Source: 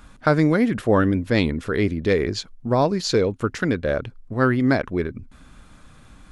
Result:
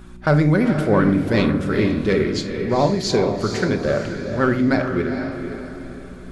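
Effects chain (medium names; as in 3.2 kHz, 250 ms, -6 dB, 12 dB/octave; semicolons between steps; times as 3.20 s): vibrato 15 Hz 54 cents; in parallel at -5.5 dB: saturation -13.5 dBFS, distortion -15 dB; on the sum: mains buzz 60 Hz, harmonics 6, -39 dBFS; on a send: echo that smears into a reverb 458 ms, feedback 41%, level -7 dB; on the sum: simulated room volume 740 m³, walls furnished, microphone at 1.1 m; trim -3.5 dB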